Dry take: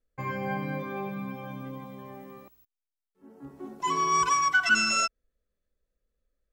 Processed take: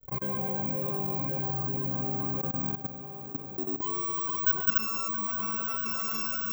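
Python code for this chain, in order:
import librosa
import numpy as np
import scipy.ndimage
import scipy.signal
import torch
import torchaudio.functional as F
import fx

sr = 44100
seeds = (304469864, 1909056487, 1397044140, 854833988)

p1 = fx.high_shelf(x, sr, hz=7900.0, db=-9.0)
p2 = p1 + fx.echo_opening(p1, sr, ms=341, hz=400, octaves=2, feedback_pct=70, wet_db=-3, dry=0)
p3 = fx.granulator(p2, sr, seeds[0], grain_ms=100.0, per_s=20.0, spray_ms=100.0, spread_st=0)
p4 = (np.kron(scipy.signal.resample_poly(p3, 1, 2), np.eye(2)[0]) * 2)[:len(p3)]
p5 = fx.level_steps(p4, sr, step_db=20)
p6 = fx.peak_eq(p5, sr, hz=1900.0, db=-11.5, octaves=0.99)
y = fx.env_flatten(p6, sr, amount_pct=50)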